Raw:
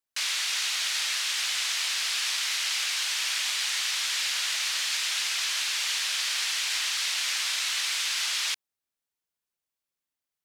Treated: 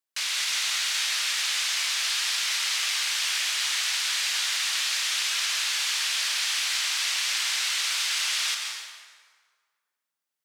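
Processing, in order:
high-pass filter 310 Hz 6 dB per octave
on a send: convolution reverb RT60 1.7 s, pre-delay 118 ms, DRR 2 dB

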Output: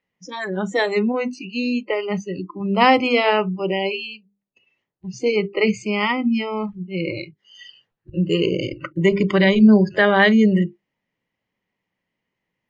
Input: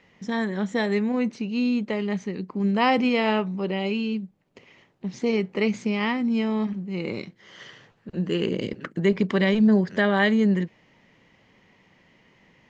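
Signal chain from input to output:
mains-hum notches 50/100/150/200/250/300/350/400/450 Hz
noise reduction from a noise print of the clip's start 28 dB
level +7 dB

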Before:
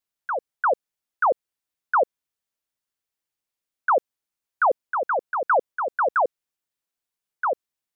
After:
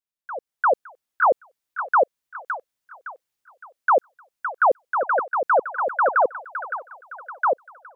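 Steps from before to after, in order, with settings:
automatic gain control gain up to 13 dB
delay with a high-pass on its return 563 ms, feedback 39%, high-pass 1,400 Hz, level −5 dB
level −9 dB

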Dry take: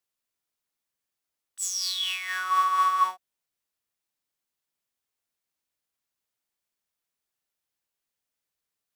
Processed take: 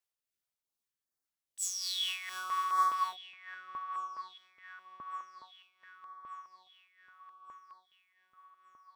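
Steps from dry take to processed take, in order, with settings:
amplitude tremolo 2.5 Hz, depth 42%
on a send: delay with a low-pass on its return 1,173 ms, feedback 58%, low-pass 2,400 Hz, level −9 dB
on the sum: notch on a step sequencer 4.8 Hz 210–2,800 Hz
level −4 dB

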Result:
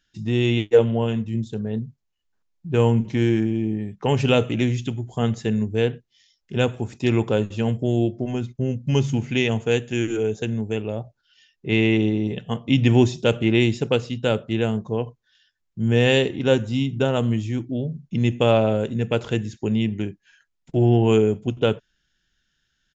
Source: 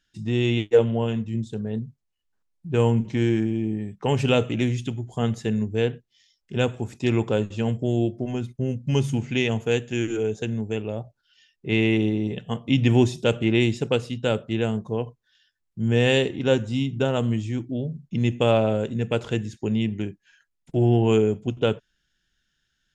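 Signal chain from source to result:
downsampling to 16,000 Hz
level +2 dB

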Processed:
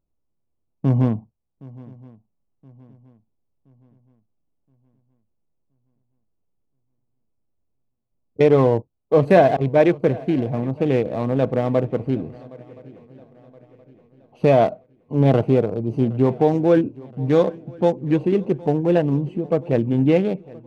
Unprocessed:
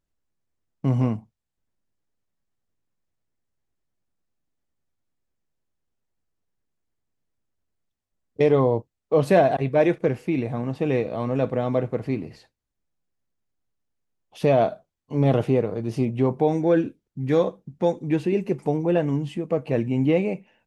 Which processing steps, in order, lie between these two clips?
adaptive Wiener filter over 25 samples
feedback echo with a long and a short gap by turns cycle 1,022 ms, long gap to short 3 to 1, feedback 40%, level −22 dB
level +4 dB

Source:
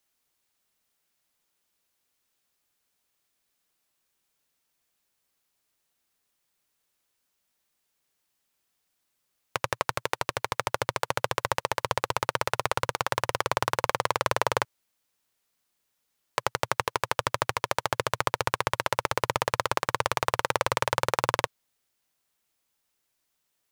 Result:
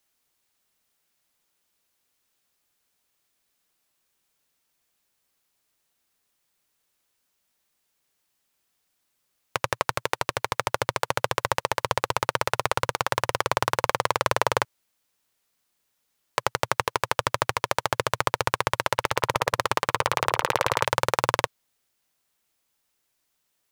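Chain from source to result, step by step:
0:18.80–0:20.85: echo through a band-pass that steps 180 ms, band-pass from 2,700 Hz, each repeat −1.4 octaves, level −6.5 dB
level +2.5 dB

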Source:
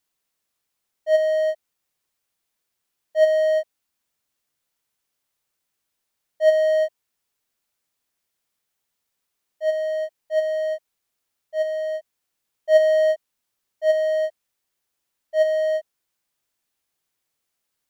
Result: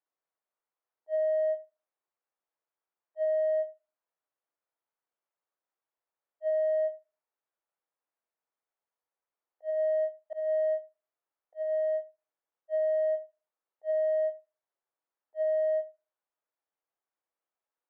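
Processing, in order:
low-pass filter 1,200 Hz 12 dB per octave
convolution reverb RT60 0.30 s, pre-delay 6 ms, DRR 6.5 dB
volume swells 210 ms
high-pass filter 480 Hz 12 dB per octave
brickwall limiter −19 dBFS, peak gain reduction 7.5 dB
level −5 dB

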